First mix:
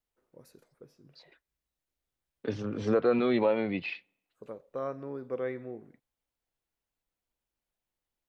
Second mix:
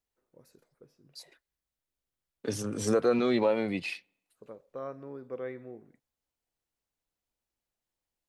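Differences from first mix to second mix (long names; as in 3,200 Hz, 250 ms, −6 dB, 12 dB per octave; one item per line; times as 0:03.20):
first voice −4.0 dB
second voice: remove low-pass filter 3,700 Hz 24 dB per octave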